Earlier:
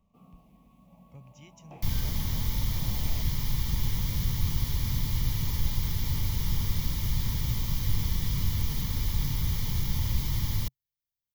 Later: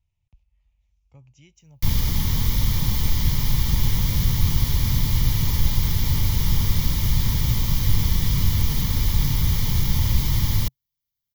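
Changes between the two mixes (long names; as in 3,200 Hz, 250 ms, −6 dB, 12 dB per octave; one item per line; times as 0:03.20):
first sound: muted
second sound +8.0 dB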